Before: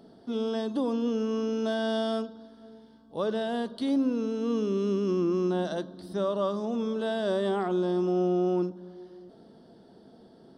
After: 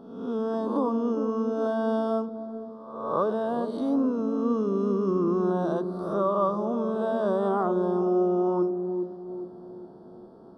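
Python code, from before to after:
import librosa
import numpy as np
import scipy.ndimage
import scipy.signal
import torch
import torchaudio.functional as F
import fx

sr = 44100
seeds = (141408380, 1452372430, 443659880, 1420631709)

p1 = fx.spec_swells(x, sr, rise_s=0.89)
p2 = fx.high_shelf_res(p1, sr, hz=1600.0, db=-11.0, q=3.0)
y = p2 + fx.echo_wet_lowpass(p2, sr, ms=408, feedback_pct=43, hz=470.0, wet_db=-5.0, dry=0)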